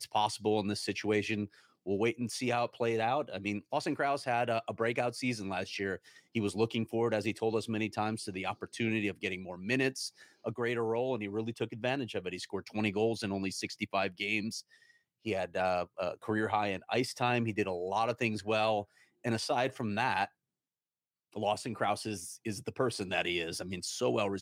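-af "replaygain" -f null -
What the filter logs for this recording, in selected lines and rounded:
track_gain = +13.6 dB
track_peak = 0.116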